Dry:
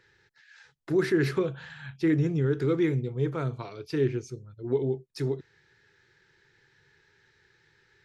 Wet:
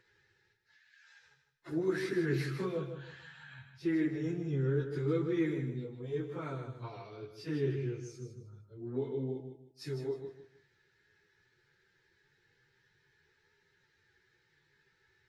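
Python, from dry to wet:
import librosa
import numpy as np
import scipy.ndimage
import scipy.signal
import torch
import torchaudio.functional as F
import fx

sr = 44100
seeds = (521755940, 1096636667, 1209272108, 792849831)

y = fx.stretch_vocoder_free(x, sr, factor=1.9)
y = fx.echo_feedback(y, sr, ms=155, feedback_pct=26, wet_db=-8.5)
y = y * librosa.db_to_amplitude(-5.5)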